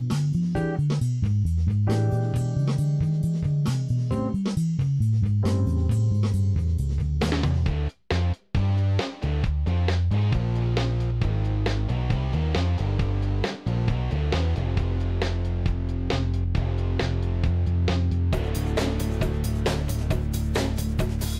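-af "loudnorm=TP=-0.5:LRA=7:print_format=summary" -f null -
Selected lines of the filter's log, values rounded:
Input Integrated:    -25.2 LUFS
Input True Peak:     -12.7 dBTP
Input LRA:             2.1 LU
Input Threshold:     -35.2 LUFS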